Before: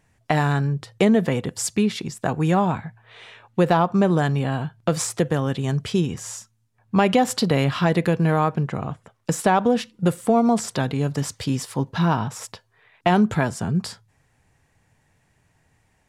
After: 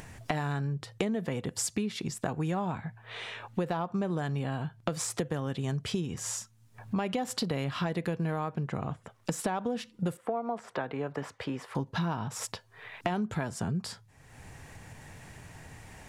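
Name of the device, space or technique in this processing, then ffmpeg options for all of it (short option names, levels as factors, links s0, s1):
upward and downward compression: -filter_complex "[0:a]asettb=1/sr,asplit=3[s0][s1][s2];[s0]atrim=end=10.174[s3];[s1]atrim=start=10.17:end=11.75,asetpts=PTS-STARTPTS,afade=t=in:d=0.004:c=qsin,afade=t=out:st=1.576:d=0.004:c=qsin,acrossover=split=360 2400:gain=0.178 1 0.0794[s4][s5][s6];[s4][s5][s6]amix=inputs=3:normalize=0[s7];[s2]atrim=start=11.746[s8];[s3][s7]acrossfade=d=0.004:c1=hsin:c2=qsin[s9];[s9][s8]acrossfade=d=0.004:c1=qsin:c2=hsin,acompressor=mode=upward:threshold=0.02:ratio=2.5,acompressor=threshold=0.0355:ratio=6"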